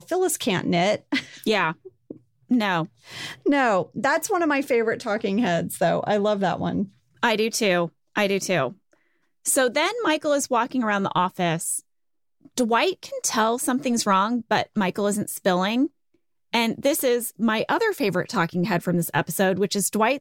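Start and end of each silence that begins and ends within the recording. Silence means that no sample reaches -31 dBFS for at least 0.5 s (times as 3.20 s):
8.69–9.46 s
11.79–12.58 s
15.87–16.54 s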